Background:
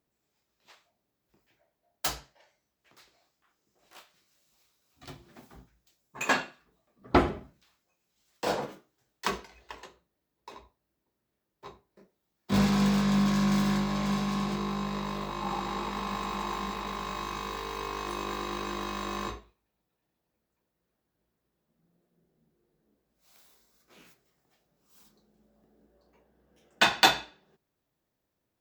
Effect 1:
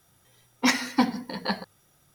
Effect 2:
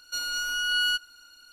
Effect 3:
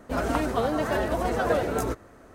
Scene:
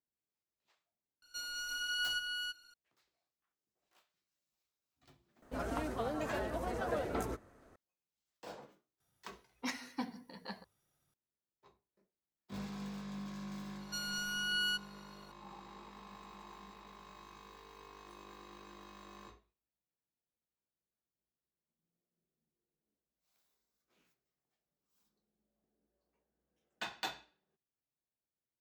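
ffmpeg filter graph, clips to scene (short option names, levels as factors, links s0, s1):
-filter_complex "[2:a]asplit=2[s0][s1];[0:a]volume=0.106[s2];[s0]aecho=1:1:328:0.668[s3];[3:a]acontrast=56[s4];[s3]atrim=end=1.52,asetpts=PTS-STARTPTS,volume=0.266,afade=t=in:d=0.004:c=hsin,afade=t=out:st=1.516:d=0.004:c=hsin,adelay=1220[s5];[s4]atrim=end=2.34,asetpts=PTS-STARTPTS,volume=0.126,afade=t=in:d=0.004:c=hsin,afade=t=out:st=2.336:d=0.004:c=hsin,adelay=5420[s6];[1:a]atrim=end=2.14,asetpts=PTS-STARTPTS,volume=0.133,afade=t=in:d=0.004:c=hsin,afade=t=out:st=2.136:d=0.004:c=hsin,adelay=9000[s7];[s1]atrim=end=1.52,asetpts=PTS-STARTPTS,volume=0.335,afade=t=in:d=0.004:c=hsin,afade=t=out:st=1.516:d=0.004:c=hsin,adelay=608580S[s8];[s2][s5][s6][s7][s8]amix=inputs=5:normalize=0"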